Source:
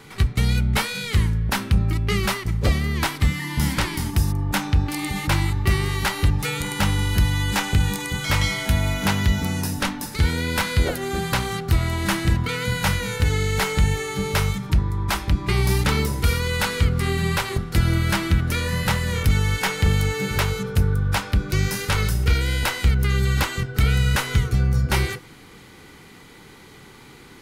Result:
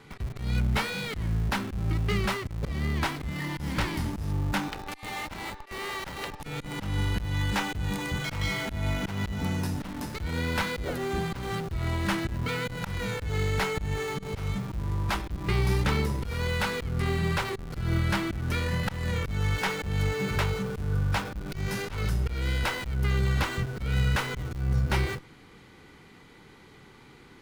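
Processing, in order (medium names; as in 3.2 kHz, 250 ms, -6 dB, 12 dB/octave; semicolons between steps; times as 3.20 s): 4.68–6.43 s: high-pass 470 Hz 24 dB/octave; slow attack 194 ms; treble shelf 6.4 kHz -11 dB; in parallel at -9 dB: Schmitt trigger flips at -33 dBFS; on the sum: trim -6 dB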